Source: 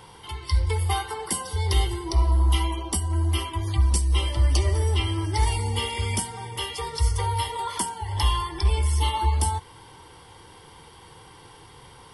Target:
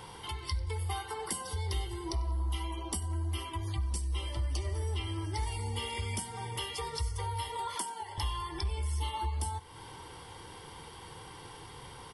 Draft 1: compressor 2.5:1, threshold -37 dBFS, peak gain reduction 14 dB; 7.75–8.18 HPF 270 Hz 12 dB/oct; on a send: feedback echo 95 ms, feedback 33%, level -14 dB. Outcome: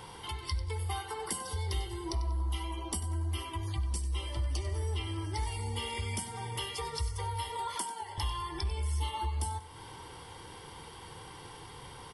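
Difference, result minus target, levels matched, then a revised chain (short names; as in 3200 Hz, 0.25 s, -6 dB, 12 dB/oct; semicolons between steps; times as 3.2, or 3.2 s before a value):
echo-to-direct +8.5 dB
compressor 2.5:1, threshold -37 dBFS, peak gain reduction 14 dB; 7.75–8.18 HPF 270 Hz 12 dB/oct; on a send: feedback echo 95 ms, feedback 33%, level -22.5 dB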